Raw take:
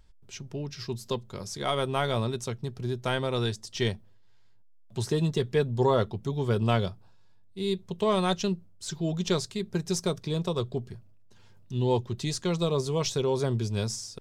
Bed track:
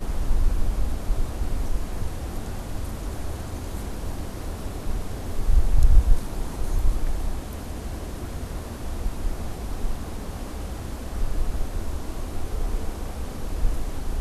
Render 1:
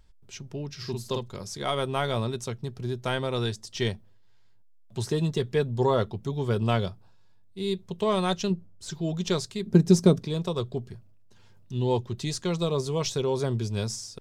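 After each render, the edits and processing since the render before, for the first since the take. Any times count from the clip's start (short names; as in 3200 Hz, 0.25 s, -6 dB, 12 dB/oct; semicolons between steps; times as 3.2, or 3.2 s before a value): 0.76–1.36 doubler 49 ms -4 dB; 8.5–8.9 tilt shelf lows +3.5 dB, about 1400 Hz; 9.66–10.25 bell 230 Hz +14.5 dB 2.1 oct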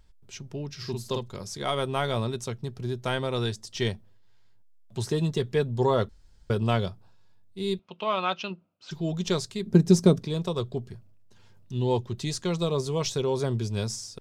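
6.09–6.5 room tone; 7.79–8.91 speaker cabinet 350–4400 Hz, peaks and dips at 420 Hz -10 dB, 1300 Hz +7 dB, 1800 Hz -7 dB, 2600 Hz +9 dB, 3900 Hz -4 dB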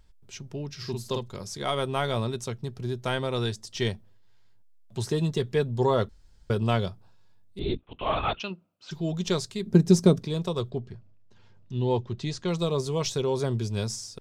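7.59–8.4 LPC vocoder at 8 kHz whisper; 10.7–12.48 air absorption 100 m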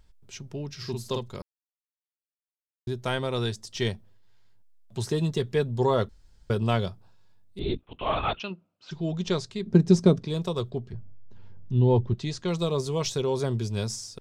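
1.42–2.87 mute; 8.4–10.28 air absorption 74 m; 10.93–12.14 tilt -2.5 dB/oct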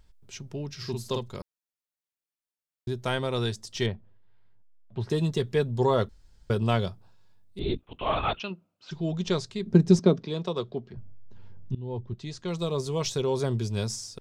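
3.86–5.1 air absorption 370 m; 9.99–10.97 three-band isolator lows -17 dB, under 150 Hz, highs -22 dB, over 6100 Hz; 11.75–13.52 fade in equal-power, from -22 dB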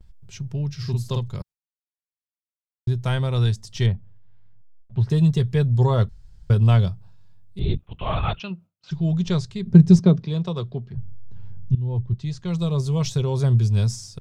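resonant low shelf 200 Hz +10 dB, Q 1.5; gate with hold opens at -43 dBFS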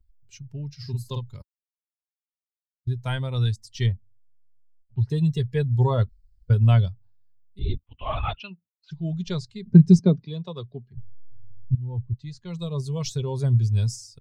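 per-bin expansion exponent 1.5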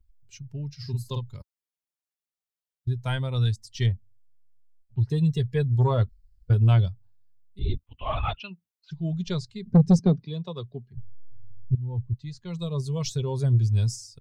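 soft clip -11 dBFS, distortion -12 dB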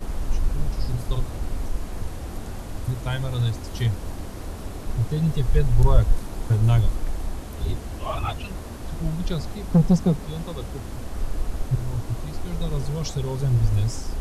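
add bed track -1.5 dB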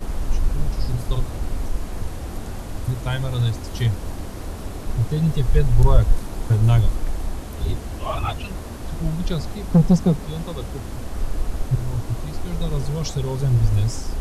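gain +2.5 dB; limiter -2 dBFS, peak gain reduction 1 dB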